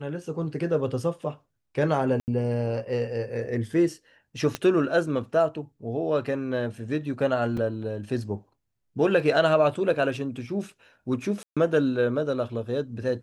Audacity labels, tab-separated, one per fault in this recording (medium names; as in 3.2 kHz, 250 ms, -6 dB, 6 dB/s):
2.200000	2.280000	dropout 79 ms
4.550000	4.550000	pop -13 dBFS
7.570000	7.570000	dropout 4.1 ms
11.430000	11.570000	dropout 136 ms